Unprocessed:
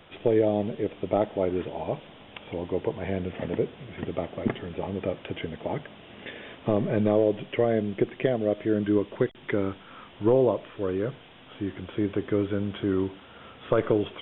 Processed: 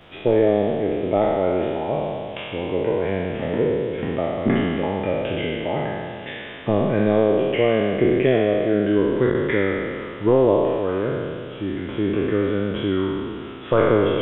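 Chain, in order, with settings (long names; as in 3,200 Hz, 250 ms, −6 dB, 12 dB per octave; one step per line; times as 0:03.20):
peak hold with a decay on every bin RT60 2.16 s
level +2.5 dB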